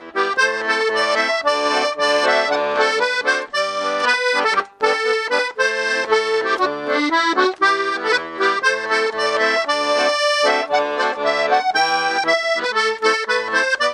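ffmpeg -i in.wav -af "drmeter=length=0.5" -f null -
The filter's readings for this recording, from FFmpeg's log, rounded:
Channel 1: DR: 10.8
Overall DR: 10.8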